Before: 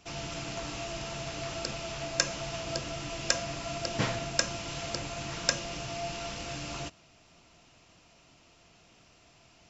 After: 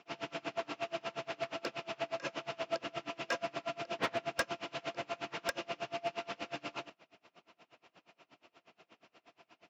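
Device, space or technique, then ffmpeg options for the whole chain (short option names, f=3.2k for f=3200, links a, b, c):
helicopter radio: -af "highpass=300,lowpass=2.8k,aeval=exprs='val(0)*pow(10,-29*(0.5-0.5*cos(2*PI*8.4*n/s))/20)':c=same,asoftclip=type=hard:threshold=-30.5dB,volume=5.5dB"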